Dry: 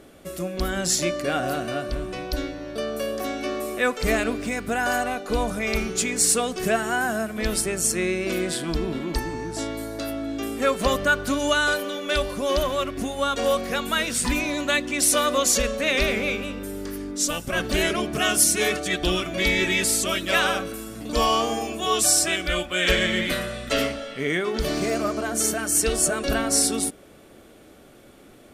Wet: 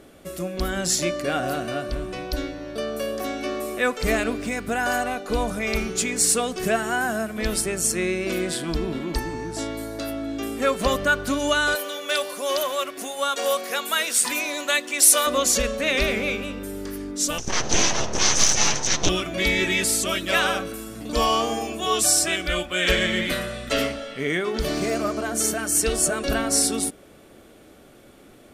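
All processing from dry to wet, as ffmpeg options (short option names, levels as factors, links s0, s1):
-filter_complex "[0:a]asettb=1/sr,asplit=3[s0][s1][s2];[s0]atrim=end=11.754[s3];[s1]atrim=start=11.75:end=15.27,asetpts=PTS-STARTPTS,afade=t=in:d=0.004:c=qsin,afade=t=out:st=3.516:d=0.004:c=qsin,highpass=450,highshelf=f=7300:g=9.5[s4];[s2]atrim=start=15.266[s5];[s3][s4]acrossfade=d=0.004:c1=hsin:c2=qsin[s6];[s6][s5]acrossfade=d=0.004:c1=qsin:c2=hsin,asettb=1/sr,asplit=3[s7][s8][s9];[s7]atrim=end=17.384[s10];[s8]atrim=start=17.38:end=19.09,asetpts=PTS-STARTPTS,afade=t=in:d=0.004:c=qsin,afade=t=out:st=1.706:d=0.004:c=qsin,lowshelf=f=410:g=5.5,aeval=exprs='abs(val(0))':c=same,lowpass=f=6100:t=q:w=9[s11];[s9]atrim=start=19.086[s12];[s10][s11]acrossfade=d=0.004:c1=hsin:c2=qsin[s13];[s13][s12]acrossfade=d=0.004:c1=qsin:c2=hsin"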